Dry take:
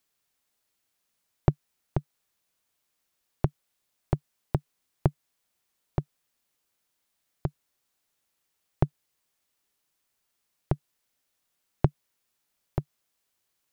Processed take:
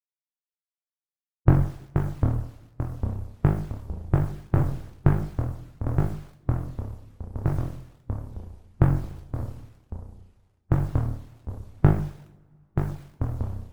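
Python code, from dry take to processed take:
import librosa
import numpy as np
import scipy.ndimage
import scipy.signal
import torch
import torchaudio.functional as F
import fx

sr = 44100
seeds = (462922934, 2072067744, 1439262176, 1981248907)

y = scipy.signal.sosfilt(scipy.signal.butter(2, 1700.0, 'lowpass', fs=sr, output='sos'), x)
y = fx.band_shelf(y, sr, hz=620.0, db=-8.5, octaves=1.7)
y = fx.hum_notches(y, sr, base_hz=50, count=6)
y = fx.room_flutter(y, sr, wall_m=3.6, rt60_s=0.47)
y = fx.vibrato(y, sr, rate_hz=1.2, depth_cents=95.0)
y = fx.quant_dither(y, sr, seeds[0], bits=10, dither='none')
y = fx.rev_double_slope(y, sr, seeds[1], early_s=0.45, late_s=2.3, knee_db=-26, drr_db=1.5)
y = fx.hpss(y, sr, part='percussive', gain_db=8)
y = fx.echo_pitch(y, sr, ms=469, semitones=-3, count=3, db_per_echo=-6.0)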